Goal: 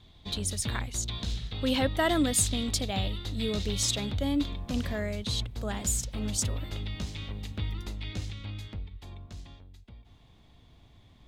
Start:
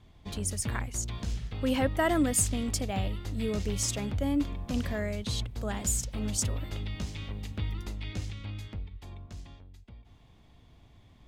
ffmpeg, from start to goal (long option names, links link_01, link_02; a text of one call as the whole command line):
ffmpeg -i in.wav -af "asetnsamples=nb_out_samples=441:pad=0,asendcmd='4.59 equalizer g 5',equalizer=frequency=3800:width_type=o:width=0.49:gain=14.5" out.wav